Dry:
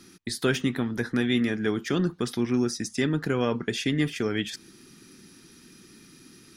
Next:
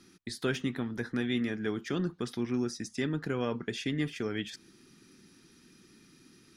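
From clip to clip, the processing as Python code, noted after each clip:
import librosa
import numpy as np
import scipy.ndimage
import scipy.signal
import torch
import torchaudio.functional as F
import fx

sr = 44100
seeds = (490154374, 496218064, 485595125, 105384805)

y = fx.high_shelf(x, sr, hz=9900.0, db=-8.5)
y = y * 10.0 ** (-6.5 / 20.0)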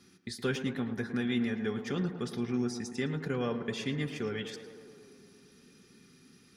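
y = fx.notch_comb(x, sr, f0_hz=320.0)
y = fx.echo_tape(y, sr, ms=111, feedback_pct=84, wet_db=-8.0, lp_hz=2100.0, drive_db=26.0, wow_cents=39)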